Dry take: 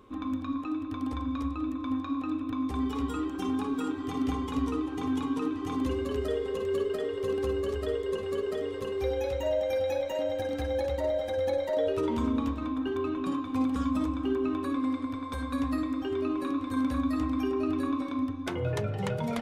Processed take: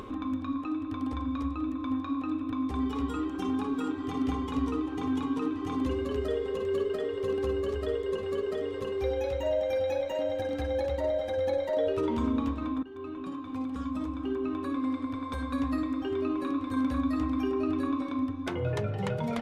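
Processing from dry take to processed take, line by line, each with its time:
12.83–15.16 fade in, from -16.5 dB
whole clip: upward compressor, threshold -31 dBFS; high shelf 6600 Hz -7.5 dB

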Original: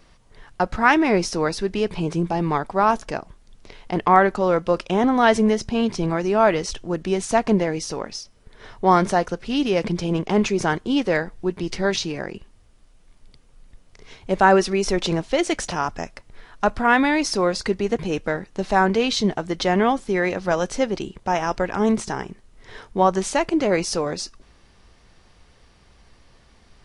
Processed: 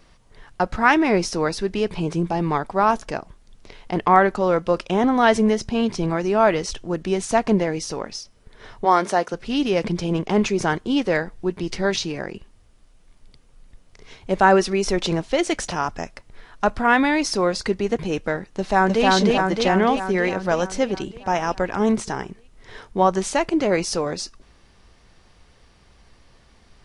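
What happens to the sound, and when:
8.84–9.33 HPF 420 Hz -> 200 Hz
18.46–19.06 echo throw 0.31 s, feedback 65%, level -0.5 dB

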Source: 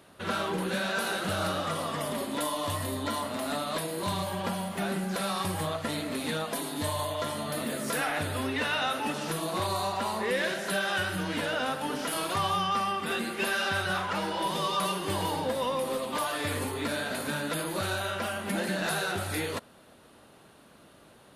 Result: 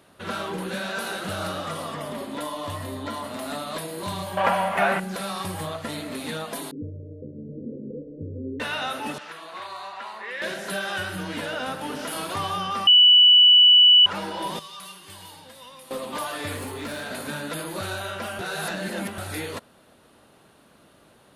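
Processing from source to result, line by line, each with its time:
1.94–3.24 high shelf 4600 Hz -7 dB
4.37–5 band shelf 1200 Hz +14 dB 2.7 oct
6.71–8.6 steep low-pass 520 Hz 96 dB/oct
9.18–10.42 band-pass 1800 Hz, Q 1.1
11.14–11.93 echo throw 0.52 s, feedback 80%, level -12.5 dB
12.87–14.06 bleep 2960 Hz -10 dBFS
14.59–15.91 passive tone stack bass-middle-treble 5-5-5
16.56–17.09 hard clip -29 dBFS
18.39–19.18 reverse

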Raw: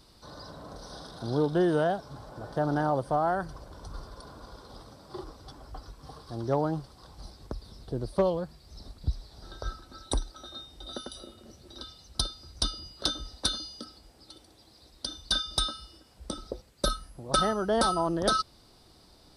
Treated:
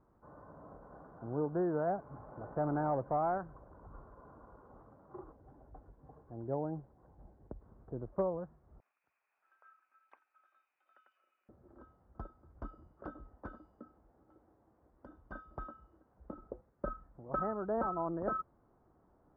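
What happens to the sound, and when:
1.87–3.38 sample leveller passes 1
5.32–7.61 bell 1200 Hz -11.5 dB 0.61 oct
8.8–11.49 resonant high-pass 2500 Hz, resonance Q 16
whole clip: inverse Chebyshev low-pass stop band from 3600 Hz, stop band 50 dB; low shelf 77 Hz -6.5 dB; gain -8 dB

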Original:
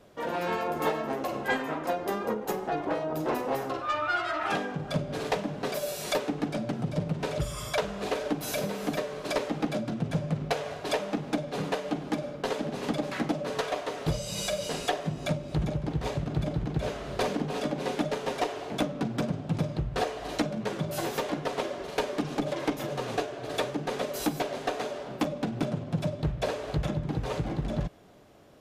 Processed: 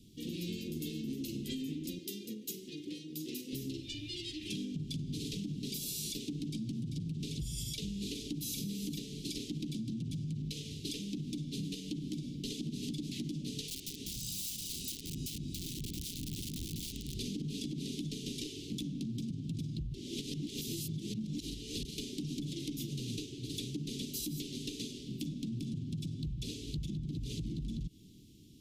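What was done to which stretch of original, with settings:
1.99–3.53 HPF 650 Hz 6 dB/oct
13.68–17.14 wrapped overs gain 28.5 dB
19.94–21.85 reverse
whole clip: inverse Chebyshev band-stop 650–1500 Hz, stop band 60 dB; limiter -29.5 dBFS; compressor, threshold -38 dBFS; gain +3 dB

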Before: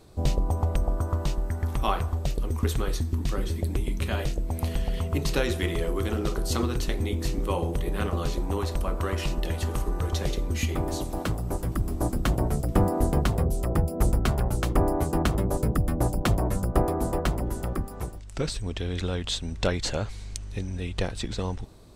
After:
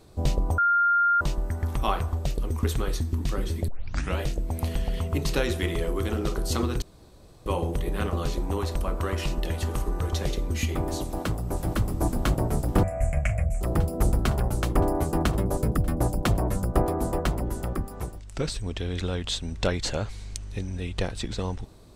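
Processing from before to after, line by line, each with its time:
0.58–1.21 bleep 1400 Hz -18 dBFS
3.68 tape start 0.51 s
6.82–7.46 room tone
11.05–11.62 echo throw 0.51 s, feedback 75%, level -2 dB
12.83–13.61 EQ curve 110 Hz 0 dB, 200 Hz -11 dB, 400 Hz -30 dB, 630 Hz +5 dB, 900 Hz -20 dB, 1400 Hz -6 dB, 2300 Hz +12 dB, 3900 Hz -28 dB, 7300 Hz +2 dB, 15000 Hz -21 dB

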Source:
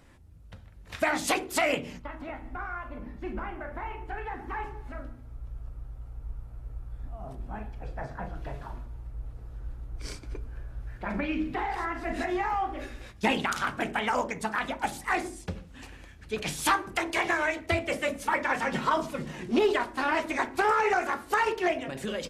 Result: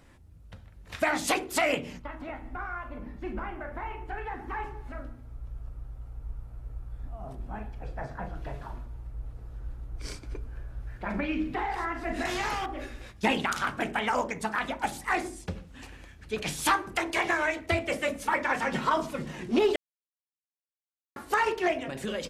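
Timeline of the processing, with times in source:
12.25–12.66 spectral compressor 2:1
19.76–21.16 mute

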